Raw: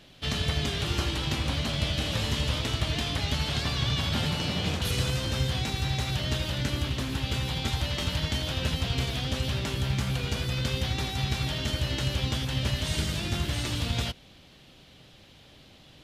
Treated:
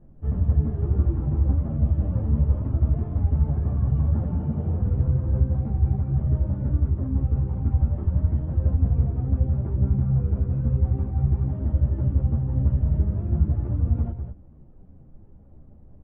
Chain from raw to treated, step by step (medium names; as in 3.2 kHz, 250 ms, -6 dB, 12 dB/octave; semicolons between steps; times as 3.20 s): Bessel low-pass 840 Hz, order 4; tilt EQ -4 dB/octave; on a send: delay 199 ms -8 dB; on the sum: three-phase chorus; trim -3 dB